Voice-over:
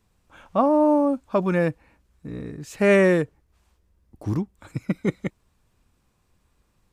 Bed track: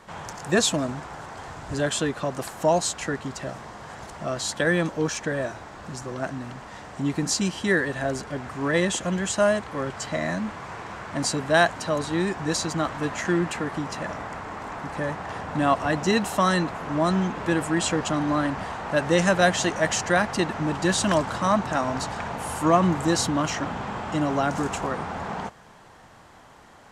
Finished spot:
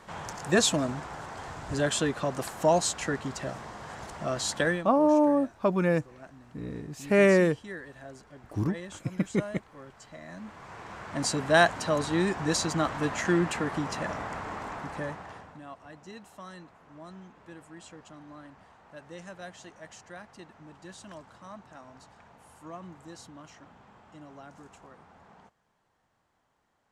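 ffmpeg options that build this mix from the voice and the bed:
-filter_complex "[0:a]adelay=4300,volume=-3.5dB[a];[1:a]volume=15dB,afade=t=out:st=4.61:d=0.24:silence=0.149624,afade=t=in:st=10.26:d=1.29:silence=0.141254,afade=t=out:st=14.52:d=1.09:silence=0.0749894[b];[a][b]amix=inputs=2:normalize=0"

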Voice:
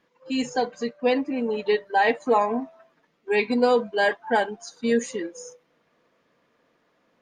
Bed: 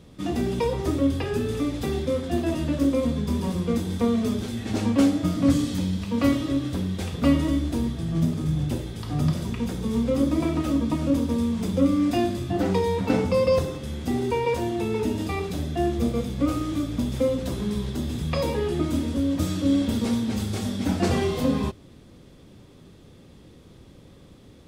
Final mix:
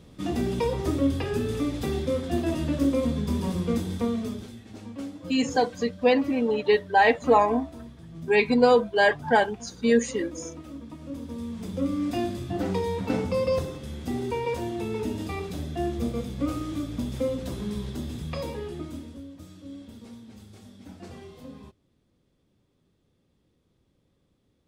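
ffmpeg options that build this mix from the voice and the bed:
-filter_complex "[0:a]adelay=5000,volume=1.5dB[a];[1:a]volume=11dB,afade=t=out:st=3.75:d=0.92:silence=0.16788,afade=t=in:st=10.99:d=1.28:silence=0.237137,afade=t=out:st=17.93:d=1.4:silence=0.158489[b];[a][b]amix=inputs=2:normalize=0"

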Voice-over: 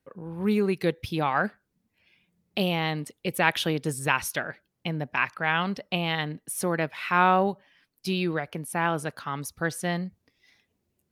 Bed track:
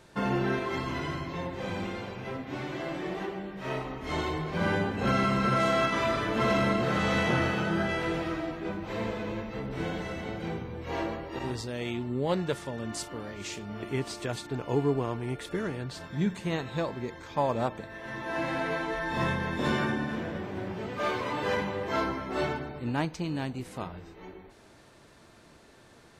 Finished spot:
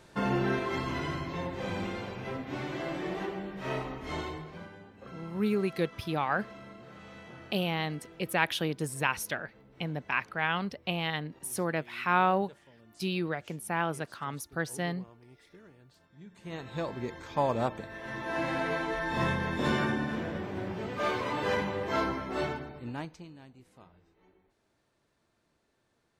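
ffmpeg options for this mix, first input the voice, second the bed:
-filter_complex "[0:a]adelay=4950,volume=-4.5dB[a];[1:a]volume=21.5dB,afade=t=out:st=3.81:d=0.88:silence=0.0794328,afade=t=in:st=16.3:d=0.75:silence=0.0794328,afade=t=out:st=22.16:d=1.19:silence=0.11885[b];[a][b]amix=inputs=2:normalize=0"

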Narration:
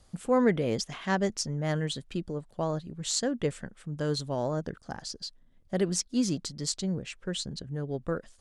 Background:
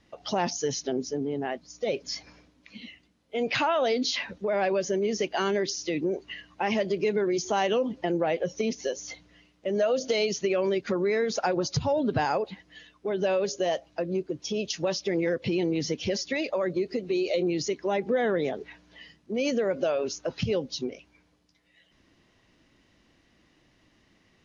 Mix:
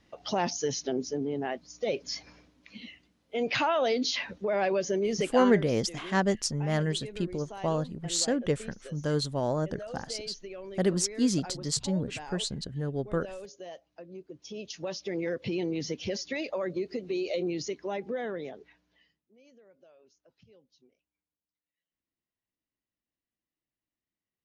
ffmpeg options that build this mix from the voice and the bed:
-filter_complex "[0:a]adelay=5050,volume=1.5dB[a];[1:a]volume=10.5dB,afade=t=out:st=5.28:d=0.37:silence=0.177828,afade=t=in:st=14.12:d=1.3:silence=0.251189,afade=t=out:st=17.49:d=1.82:silence=0.0398107[b];[a][b]amix=inputs=2:normalize=0"

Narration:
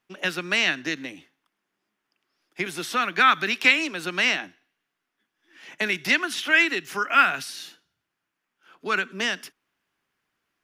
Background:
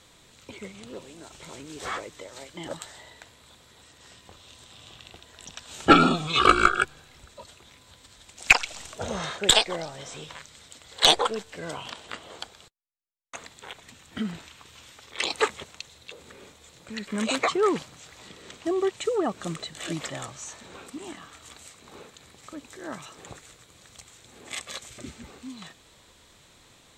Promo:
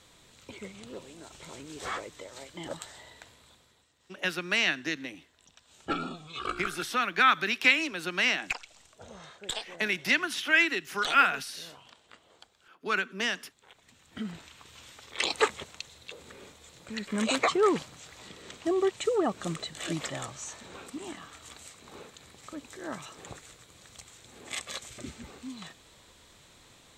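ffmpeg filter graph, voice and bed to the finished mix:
-filter_complex "[0:a]adelay=4000,volume=-4dB[a];[1:a]volume=13dB,afade=t=out:st=3.31:d=0.56:silence=0.199526,afade=t=in:st=13.65:d=1.21:silence=0.16788[b];[a][b]amix=inputs=2:normalize=0"

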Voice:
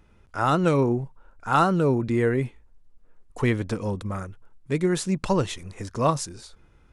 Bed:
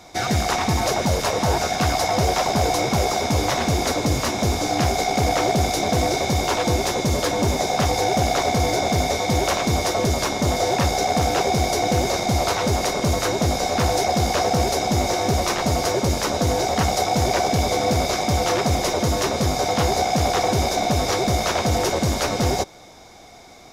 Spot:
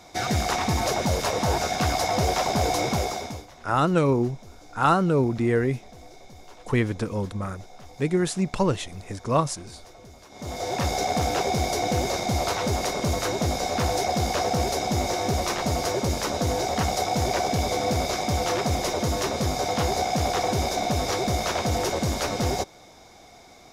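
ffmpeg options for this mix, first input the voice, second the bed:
-filter_complex "[0:a]adelay=3300,volume=0dB[a];[1:a]volume=19dB,afade=t=out:st=2.88:d=0.58:silence=0.0668344,afade=t=in:st=10.29:d=0.63:silence=0.0749894[b];[a][b]amix=inputs=2:normalize=0"

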